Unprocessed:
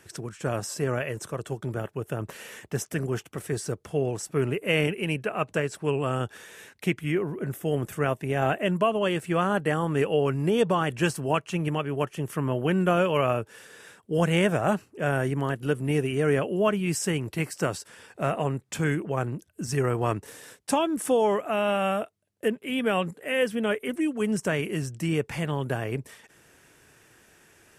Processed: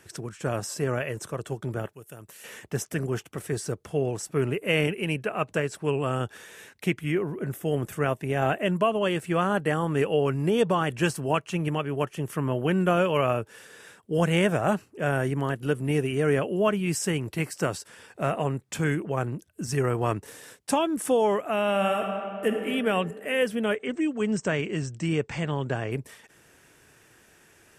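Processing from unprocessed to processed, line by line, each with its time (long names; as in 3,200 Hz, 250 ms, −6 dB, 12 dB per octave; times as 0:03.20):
0:01.93–0:02.44: first-order pre-emphasis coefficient 0.8
0:21.70–0:22.51: thrown reverb, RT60 2.7 s, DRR 2.5 dB
0:23.75–0:25.92: linear-phase brick-wall low-pass 8,500 Hz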